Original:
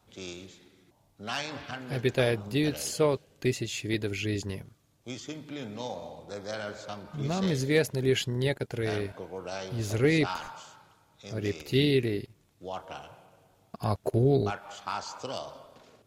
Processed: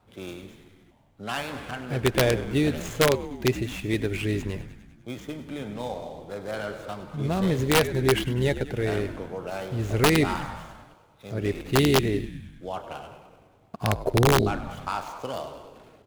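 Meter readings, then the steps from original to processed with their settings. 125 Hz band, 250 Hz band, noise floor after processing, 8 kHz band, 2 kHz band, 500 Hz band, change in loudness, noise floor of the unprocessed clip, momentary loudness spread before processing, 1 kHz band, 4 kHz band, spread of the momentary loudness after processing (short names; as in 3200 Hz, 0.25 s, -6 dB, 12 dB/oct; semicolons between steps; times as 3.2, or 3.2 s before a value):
+4.0 dB, +4.0 dB, -58 dBFS, +4.5 dB, +5.0 dB, +3.5 dB, +4.0 dB, -66 dBFS, 16 LU, +7.0 dB, +4.0 dB, 19 LU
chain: median filter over 9 samples; frequency-shifting echo 0.1 s, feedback 64%, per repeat -64 Hz, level -13 dB; wrapped overs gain 15.5 dB; gain +4 dB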